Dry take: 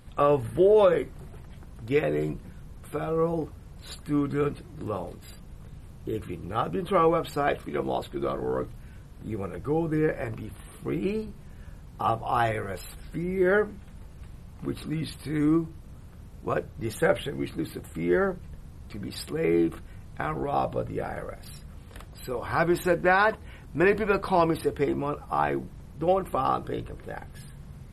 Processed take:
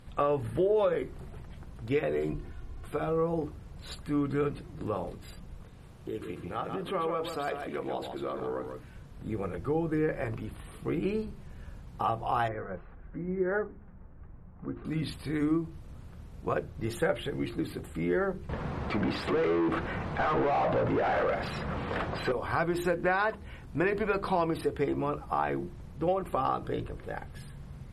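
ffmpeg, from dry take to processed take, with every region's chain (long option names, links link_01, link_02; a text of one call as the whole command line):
ffmpeg -i in.wav -filter_complex "[0:a]asettb=1/sr,asplit=3[link_01][link_02][link_03];[link_01]atrim=end=2.324[link_04];[link_02]atrim=start=2.32:end=2.88,asetpts=PTS-STARTPTS,afade=type=in:duration=0.004:curve=qsin,afade=type=out:start_time=0.556:duration=0.004:curve=qsin,highshelf=frequency=7600:gain=-7,aecho=1:1:2.8:0.64,atrim=end_sample=24696[link_05];[link_03]atrim=start=2.876[link_06];[link_04][link_05]acrossfade=duration=0.004:curve1=hsin:curve2=qsin[link_07];[link_07][link_06]acrossfade=duration=0.004:curve1=qsin:curve2=hsin,asettb=1/sr,asplit=3[link_08][link_09][link_10];[link_08]atrim=end=5.634[link_11];[link_09]atrim=start=5.63:end=8.95,asetpts=PTS-STARTPTS,afade=type=in:duration=0.004:curve=qsin,afade=type=out:start_time=3.316:duration=0.004:curve=qsin,lowshelf=frequency=160:gain=-8.5,acompressor=threshold=-33dB:ratio=2:attack=3.2:release=140:knee=1:detection=peak,aecho=1:1:144:0.473,atrim=end_sample=146412[link_12];[link_10]atrim=start=8.946[link_13];[link_11][link_12]acrossfade=duration=0.004:curve1=hsin:curve2=qsin[link_14];[link_14][link_13]acrossfade=duration=0.004:curve1=qsin:curve2=hsin,asettb=1/sr,asplit=3[link_15][link_16][link_17];[link_15]atrim=end=12.484[link_18];[link_16]atrim=start=12.48:end=14.85,asetpts=PTS-STARTPTS,afade=type=in:duration=0.004:curve=qsin,afade=type=out:start_time=2.366:duration=0.004:curve=qsin,lowpass=frequency=1700:width=0.5412,lowpass=frequency=1700:width=1.3066,flanger=delay=2.4:depth=3.6:regen=64:speed=1.7:shape=triangular[link_19];[link_17]atrim=start=14.846[link_20];[link_18][link_19]acrossfade=duration=0.004:curve1=hsin:curve2=qsin[link_21];[link_21][link_20]acrossfade=duration=0.004:curve1=qsin:curve2=hsin,asettb=1/sr,asplit=3[link_22][link_23][link_24];[link_22]atrim=end=18.494[link_25];[link_23]atrim=start=18.49:end=22.32,asetpts=PTS-STARTPTS,afade=type=in:duration=0.004:curve=qsin,afade=type=out:start_time=3.826:duration=0.004:curve=qsin,acompressor=threshold=-26dB:ratio=6:attack=3.2:release=140:knee=1:detection=peak,asplit=2[link_26][link_27];[link_27]highpass=frequency=720:poles=1,volume=33dB,asoftclip=type=tanh:threshold=-16.5dB[link_28];[link_26][link_28]amix=inputs=2:normalize=0,lowpass=frequency=1900:poles=1,volume=-6dB,aemphasis=mode=reproduction:type=75kf[link_29];[link_24]atrim=start=22.316[link_30];[link_25][link_29]acrossfade=duration=0.004:curve1=hsin:curve2=qsin[link_31];[link_31][link_30]acrossfade=duration=0.004:curve1=qsin:curve2=hsin,highshelf=frequency=9000:gain=-10,bandreject=frequency=50:width_type=h:width=6,bandreject=frequency=100:width_type=h:width=6,bandreject=frequency=150:width_type=h:width=6,bandreject=frequency=200:width_type=h:width=6,bandreject=frequency=250:width_type=h:width=6,bandreject=frequency=300:width_type=h:width=6,bandreject=frequency=350:width_type=h:width=6,bandreject=frequency=400:width_type=h:width=6,acompressor=threshold=-26dB:ratio=2.5" out.wav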